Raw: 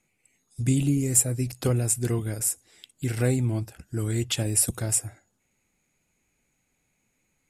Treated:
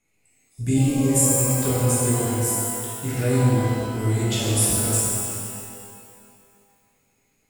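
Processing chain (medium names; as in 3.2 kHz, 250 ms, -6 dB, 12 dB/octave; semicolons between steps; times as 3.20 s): pitch-shifted reverb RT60 2.2 s, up +12 st, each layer -8 dB, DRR -8 dB; trim -4.5 dB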